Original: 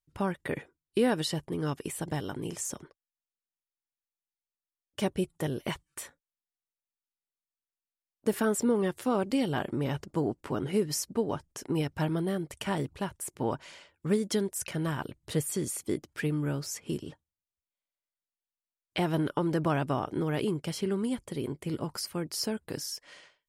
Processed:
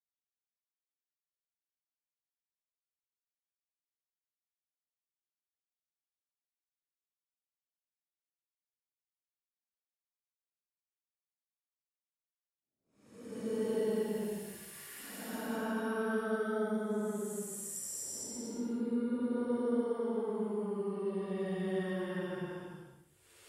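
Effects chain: expander -58 dBFS; Paulstretch 14×, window 0.10 s, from 7.30 s; trim -9 dB

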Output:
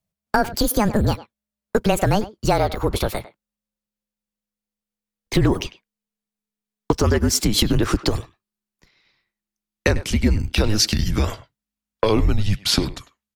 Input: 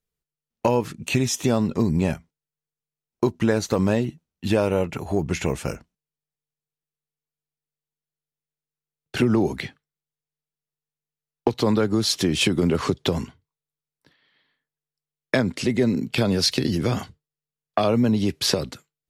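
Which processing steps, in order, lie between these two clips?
gliding tape speed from 191% -> 95%; frequency shift -210 Hz; speakerphone echo 100 ms, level -15 dB; trim +3 dB

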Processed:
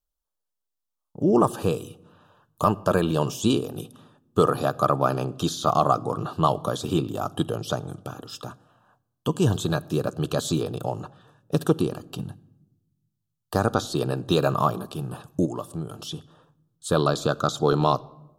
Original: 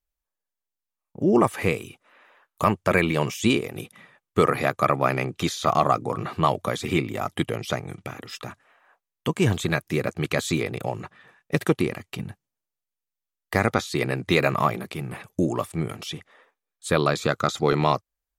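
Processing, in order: simulated room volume 3700 m³, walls furnished, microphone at 0.43 m; 15.45–16.12 s: compression 2.5:1, threshold -30 dBFS, peak gain reduction 7 dB; Butterworth band-stop 2.1 kHz, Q 1.4

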